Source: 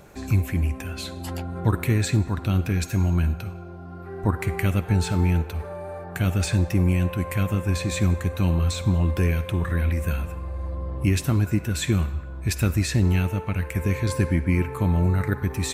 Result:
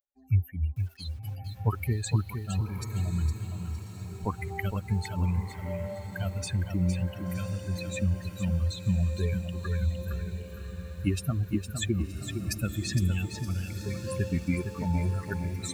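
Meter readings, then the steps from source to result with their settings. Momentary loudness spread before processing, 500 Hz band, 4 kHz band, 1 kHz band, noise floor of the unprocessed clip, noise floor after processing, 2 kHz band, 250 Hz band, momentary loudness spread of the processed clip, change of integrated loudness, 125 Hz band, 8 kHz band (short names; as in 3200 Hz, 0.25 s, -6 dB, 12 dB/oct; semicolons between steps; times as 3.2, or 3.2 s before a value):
10 LU, -8.0 dB, -6.0 dB, -8.0 dB, -38 dBFS, -44 dBFS, -8.5 dB, -7.0 dB, 7 LU, -7.0 dB, -6.5 dB, -6.5 dB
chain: per-bin expansion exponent 3; diffused feedback echo 1.123 s, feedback 47%, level -10 dB; lo-fi delay 0.461 s, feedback 35%, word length 9-bit, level -7 dB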